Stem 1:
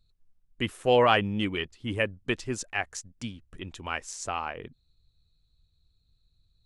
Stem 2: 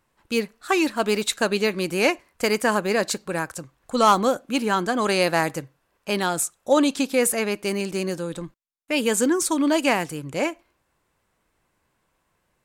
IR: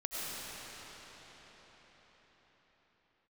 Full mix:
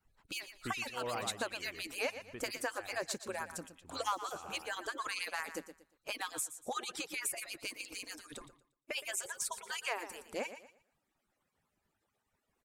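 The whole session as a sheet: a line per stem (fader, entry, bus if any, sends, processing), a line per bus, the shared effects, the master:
-2.5 dB, 0.05 s, no send, echo send -13 dB, harmonic tremolo 1.8 Hz, depth 100%, crossover 2200 Hz; auto duck -13 dB, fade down 1.70 s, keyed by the second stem
-6.5 dB, 0.00 s, no send, echo send -14 dB, median-filter separation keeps percussive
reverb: off
echo: feedback echo 0.117 s, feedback 24%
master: compressor 2:1, threshold -39 dBFS, peak gain reduction 10.5 dB

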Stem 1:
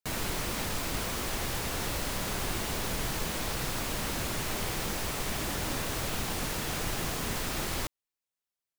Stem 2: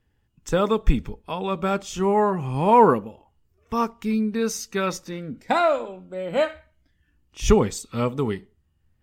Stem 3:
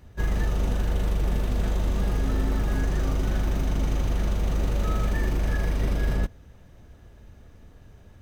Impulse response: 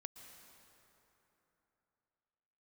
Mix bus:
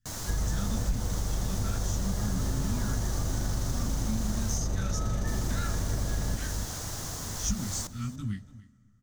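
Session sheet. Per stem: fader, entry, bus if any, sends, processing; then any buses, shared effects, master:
-5.5 dB, 0.00 s, muted 4.58–5.27, no send, echo send -17.5 dB, dry
-4.5 dB, 0.00 s, send -11 dB, echo send -18 dB, Chebyshev band-stop 250–1500 Hz, order 3; detuned doubles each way 42 cents
-4.0 dB, 0.10 s, send -5.5 dB, echo send -6.5 dB, dry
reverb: on, RT60 3.4 s, pre-delay 0.108 s
echo: echo 0.288 s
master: fifteen-band EQ 100 Hz +7 dB, 400 Hz -4 dB, 2500 Hz -10 dB, 6300 Hz +10 dB; compressor 3:1, threshold -26 dBFS, peak gain reduction 8.5 dB

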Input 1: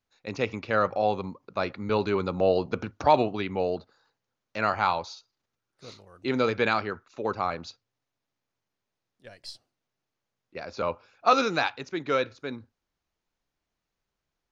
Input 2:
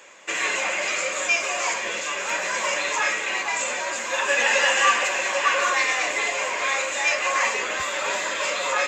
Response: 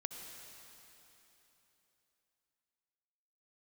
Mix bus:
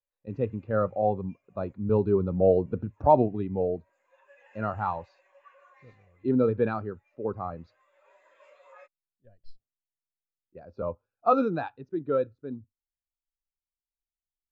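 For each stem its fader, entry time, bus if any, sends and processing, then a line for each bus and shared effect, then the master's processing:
-1.0 dB, 0.00 s, no send, notch 2200 Hz, Q 7.9
3.74 s -21.5 dB -> 4.01 s -14 dB -> 5.9 s -14 dB -> 6.43 s -22.5 dB -> 7.27 s -22.5 dB -> 7.7 s -15.5 dB, 0.00 s, no send, HPF 430 Hz 12 dB/oct; auto duck -7 dB, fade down 1.30 s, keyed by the first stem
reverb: off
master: tilt -3 dB/oct; spectral expander 1.5:1

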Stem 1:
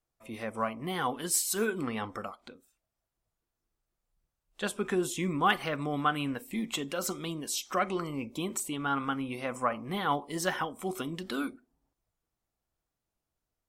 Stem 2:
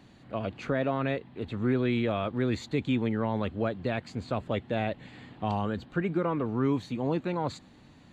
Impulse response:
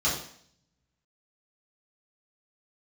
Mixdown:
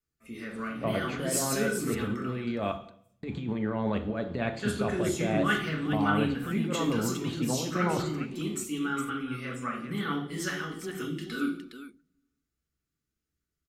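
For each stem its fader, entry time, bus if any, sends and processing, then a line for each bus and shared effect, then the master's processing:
-3.5 dB, 0.00 s, send -8.5 dB, echo send -8 dB, band shelf 760 Hz -15.5 dB 1.2 oct
-1.0 dB, 0.50 s, muted 2.72–3.23, send -16.5 dB, no echo send, negative-ratio compressor -30 dBFS, ratio -0.5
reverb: on, RT60 0.60 s, pre-delay 3 ms
echo: echo 0.414 s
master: dry

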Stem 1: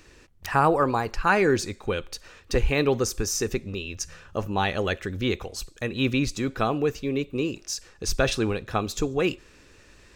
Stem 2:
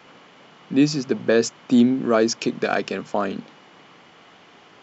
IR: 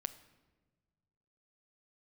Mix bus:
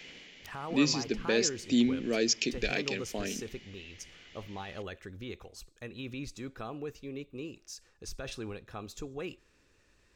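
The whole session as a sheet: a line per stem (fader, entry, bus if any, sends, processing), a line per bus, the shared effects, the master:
-14.0 dB, 0.00 s, no send, limiter -16 dBFS, peak gain reduction 8 dB
-4.0 dB, 0.00 s, send -18.5 dB, EQ curve 430 Hz 0 dB, 1200 Hz -15 dB, 2000 Hz +9 dB; auto duck -8 dB, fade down 0.50 s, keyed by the first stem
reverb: on, pre-delay 7 ms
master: dry

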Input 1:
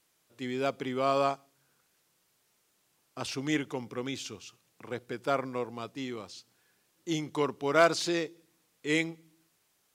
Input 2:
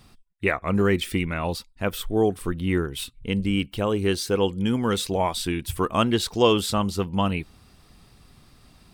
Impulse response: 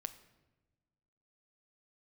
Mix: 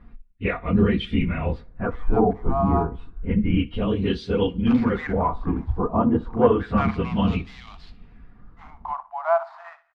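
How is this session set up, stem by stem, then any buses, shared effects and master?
0.0 dB, 1.50 s, send -11 dB, echo send -14 dB, median filter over 15 samples; steep high-pass 670 Hz 96 dB/oct; high shelf 3800 Hz +8.5 dB
-6.5 dB, 0.00 s, send -12 dB, echo send -20 dB, phase scrambler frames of 50 ms; tilt -3 dB/oct; comb 4.2 ms, depth 41%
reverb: on, pre-delay 7 ms
echo: feedback echo 61 ms, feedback 23%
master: LFO low-pass sine 0.3 Hz 850–3600 Hz

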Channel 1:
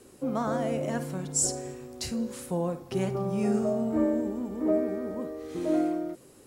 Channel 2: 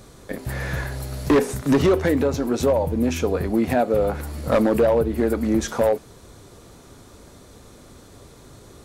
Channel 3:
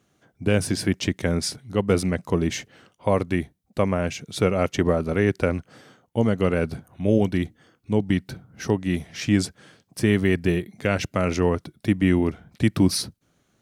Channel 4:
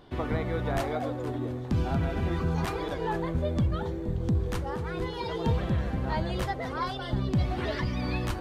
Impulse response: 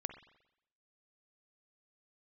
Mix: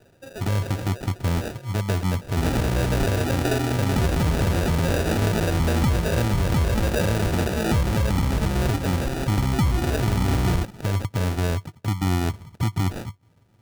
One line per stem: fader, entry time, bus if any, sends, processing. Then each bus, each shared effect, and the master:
+1.0 dB, 0.00 s, send -8.5 dB, HPF 400 Hz 24 dB/oct; flange 1.7 Hz, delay 2.6 ms, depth 4.7 ms, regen +64%; auto duck -10 dB, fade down 0.50 s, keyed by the third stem
-5.5 dB, 2.15 s, send -3 dB, compressor 2:1, threshold -28 dBFS, peak gain reduction 8 dB
+0.5 dB, 0.00 s, send -21 dB, bell 100 Hz +14 dB 0.92 oct; compressor 2:1, threshold -25 dBFS, peak gain reduction 10 dB
+2.0 dB, 2.25 s, no send, low shelf 370 Hz +9 dB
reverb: on, pre-delay 44 ms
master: sample-and-hold 41×; limiter -14.5 dBFS, peak gain reduction 10 dB

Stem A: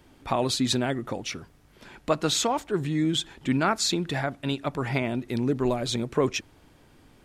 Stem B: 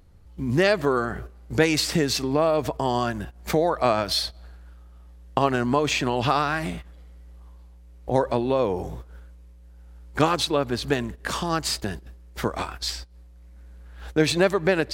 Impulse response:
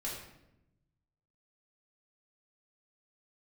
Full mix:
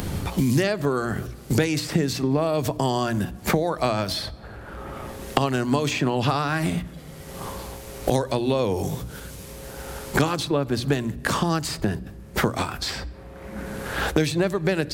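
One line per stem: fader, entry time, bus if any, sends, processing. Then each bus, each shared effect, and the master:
-19.0 dB, 0.00 s, no send, limiter -19 dBFS, peak gain reduction 9 dB; negative-ratio compressor -37 dBFS; auto duck -19 dB, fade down 0.20 s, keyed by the second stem
-4.0 dB, 0.00 s, send -21.5 dB, low shelf 240 Hz +11.5 dB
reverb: on, RT60 0.85 s, pre-delay 4 ms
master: high shelf 5500 Hz +7.5 dB; notches 60/120/180/240/300 Hz; three-band squash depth 100%

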